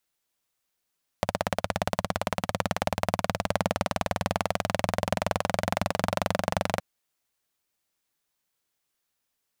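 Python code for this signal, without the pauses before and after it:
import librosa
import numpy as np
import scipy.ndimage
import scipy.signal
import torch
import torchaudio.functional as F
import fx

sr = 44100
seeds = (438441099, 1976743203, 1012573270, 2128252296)

y = fx.engine_single_rev(sr, seeds[0], length_s=5.57, rpm=2000, resonances_hz=(100.0, 180.0, 600.0), end_rpm=2800)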